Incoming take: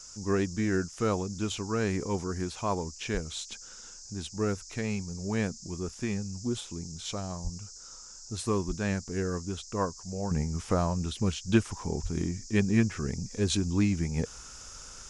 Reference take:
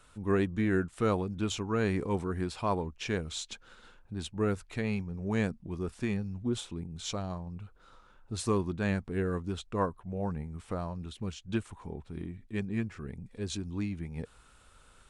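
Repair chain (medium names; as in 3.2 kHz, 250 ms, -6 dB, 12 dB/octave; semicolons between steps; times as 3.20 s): de-plosive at 3.13/7.43/8.67/12.02 s; noise print and reduce 11 dB; trim 0 dB, from 10.31 s -8.5 dB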